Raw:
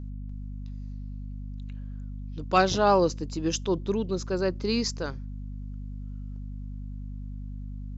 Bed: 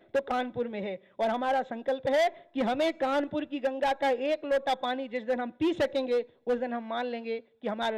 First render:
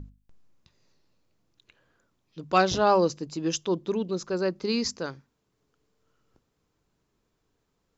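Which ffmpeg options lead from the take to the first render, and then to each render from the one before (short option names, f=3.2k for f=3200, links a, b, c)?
-af "bandreject=f=50:t=h:w=6,bandreject=f=100:t=h:w=6,bandreject=f=150:t=h:w=6,bandreject=f=200:t=h:w=6,bandreject=f=250:t=h:w=6"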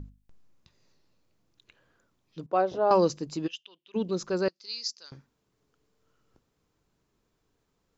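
-filter_complex "[0:a]asettb=1/sr,asplit=3[a][b][c];[a]atrim=end=2.464[d];[b]atrim=start=2.46:end=2.91,asetpts=PTS-STARTPTS,afade=t=in:d=0.004:c=qsin,afade=t=out:st=0.446:d=0.004:c=qsin,bandpass=f=560:t=q:w=1.5[e];[c]atrim=start=2.906[f];[d][e]acrossfade=d=0.004:c1=hsin:c2=qsin[g];[g][f]acrossfade=d=0.004:c1=qsin:c2=hsin,asplit=3[h][i][j];[h]afade=t=out:st=3.46:d=0.02[k];[i]bandpass=f=2.9k:t=q:w=6.8,afade=t=in:st=3.46:d=0.02,afade=t=out:st=3.94:d=0.02[l];[j]afade=t=in:st=3.94:d=0.02[m];[k][l][m]amix=inputs=3:normalize=0,asettb=1/sr,asplit=3[n][o][p];[n]atrim=end=4.484[q];[o]atrim=start=4.48:end=5.12,asetpts=PTS-STARTPTS,afade=t=in:d=0.004:c=qsin,afade=t=out:st=0.636:d=0.004:c=qsin,bandpass=f=4.9k:t=q:w=2.6[r];[p]atrim=start=5.116[s];[q][r]acrossfade=d=0.004:c1=hsin:c2=qsin[t];[t][s]acrossfade=d=0.004:c1=qsin:c2=hsin"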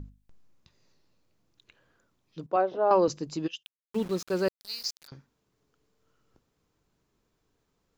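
-filter_complex "[0:a]asettb=1/sr,asplit=3[a][b][c];[a]atrim=end=2.564[d];[b]atrim=start=2.56:end=3.08,asetpts=PTS-STARTPTS,afade=t=in:d=0.004:c=qsin,afade=t=out:st=0.516:d=0.004:c=qsin,highpass=240,lowpass=2.9k[e];[c]atrim=start=3.076[f];[d][e]acrossfade=d=0.004:c1=hsin:c2=qsin[g];[g][f]acrossfade=d=0.004:c1=qsin:c2=hsin,asettb=1/sr,asplit=3[h][i][j];[h]atrim=end=3.634[k];[i]atrim=start=3.63:end=5.08,asetpts=PTS-STARTPTS,afade=t=in:d=0.004:c=qsin,afade=t=out:st=1.446:d=0.004:c=qsin,aeval=exprs='val(0)*gte(abs(val(0)),0.0106)':c=same[l];[j]atrim=start=5.076[m];[k][l]acrossfade=d=0.004:c1=hsin:c2=qsin[n];[n][m]acrossfade=d=0.004:c1=qsin:c2=hsin"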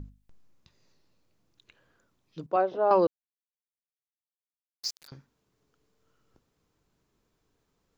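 -filter_complex "[0:a]asplit=3[a][b][c];[a]atrim=end=3.07,asetpts=PTS-STARTPTS,afade=t=out:st=3.066:d=0.004:c=hsin[d];[b]atrim=start=3.07:end=4.83,asetpts=PTS-STARTPTS,volume=0[e];[c]atrim=start=4.83,asetpts=PTS-STARTPTS,afade=t=in:d=0.004:c=hsin[f];[d][e][f]concat=n=3:v=0:a=1"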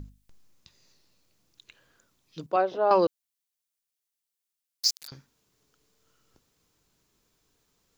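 -af "highshelf=f=2.6k:g=11.5"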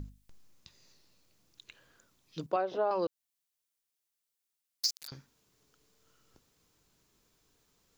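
-af "alimiter=limit=-13.5dB:level=0:latency=1:release=421,acompressor=threshold=-26dB:ratio=10"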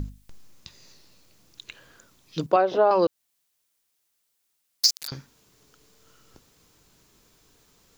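-af "volume=11dB"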